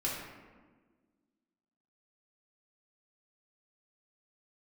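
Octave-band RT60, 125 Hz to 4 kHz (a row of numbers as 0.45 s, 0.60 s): 1.6 s, 2.2 s, 1.6 s, 1.3 s, 1.1 s, 0.75 s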